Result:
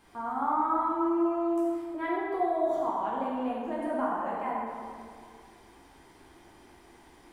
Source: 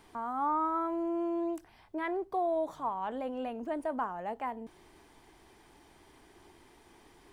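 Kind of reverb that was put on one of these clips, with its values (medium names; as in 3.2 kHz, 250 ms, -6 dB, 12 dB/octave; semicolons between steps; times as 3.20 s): plate-style reverb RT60 2.1 s, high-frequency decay 0.65×, DRR -7 dB; trim -4 dB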